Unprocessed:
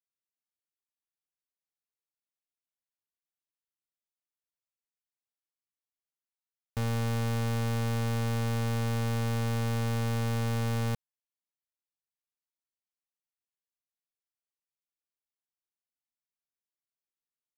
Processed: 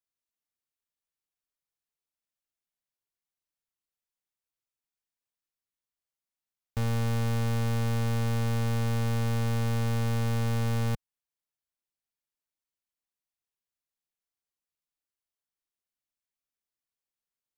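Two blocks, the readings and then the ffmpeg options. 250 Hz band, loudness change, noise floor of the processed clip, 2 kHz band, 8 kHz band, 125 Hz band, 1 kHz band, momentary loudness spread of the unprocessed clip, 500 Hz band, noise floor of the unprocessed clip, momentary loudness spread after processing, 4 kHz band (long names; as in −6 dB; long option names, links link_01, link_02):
+1.0 dB, +1.5 dB, below −85 dBFS, 0.0 dB, 0.0 dB, +2.0 dB, 0.0 dB, 2 LU, 0.0 dB, below −85 dBFS, 2 LU, 0.0 dB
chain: -af "lowshelf=frequency=82:gain=6.5"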